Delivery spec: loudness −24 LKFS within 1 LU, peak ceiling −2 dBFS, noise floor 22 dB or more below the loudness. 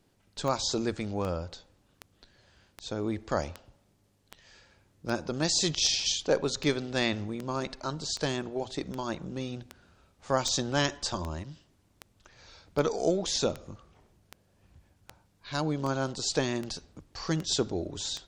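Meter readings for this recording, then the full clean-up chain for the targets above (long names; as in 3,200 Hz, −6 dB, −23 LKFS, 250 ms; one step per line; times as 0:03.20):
number of clicks 24; integrated loudness −30.5 LKFS; sample peak −11.5 dBFS; target loudness −24.0 LKFS
→ click removal
level +6.5 dB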